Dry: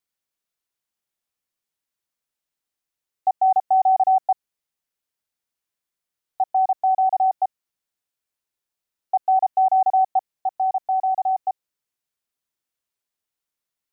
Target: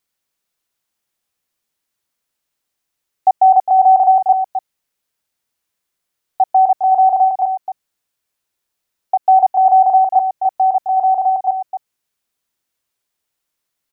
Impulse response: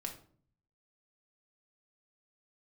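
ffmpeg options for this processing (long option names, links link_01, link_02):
-filter_complex "[0:a]asettb=1/sr,asplit=3[link_01][link_02][link_03];[link_01]atrim=end=7.284[link_04];[link_02]atrim=start=7.28:end=9.26,asetpts=PTS-STARTPTS,afade=type=in:duration=0.004:curve=qsin,afade=type=out:start_time=1.976:duration=0.004:curve=qsin,acompressor=threshold=-20dB:ratio=6[link_05];[link_03]atrim=start=9.256[link_06];[link_04][link_05]acrossfade=duration=0.004:curve1=hsin:curve2=qsin[link_07];[link_07][link_06]acrossfade=duration=0.004:curve1=qsin:curve2=hsin,asplit=2[link_08][link_09];[link_09]aecho=0:1:262:0.355[link_10];[link_08][link_10]amix=inputs=2:normalize=0,volume=8dB"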